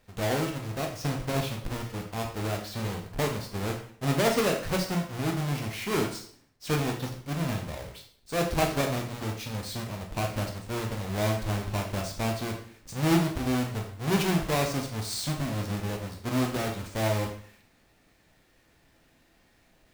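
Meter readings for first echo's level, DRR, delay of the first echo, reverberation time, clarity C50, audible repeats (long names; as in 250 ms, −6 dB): no echo audible, 1.0 dB, no echo audible, 0.55 s, 7.0 dB, no echo audible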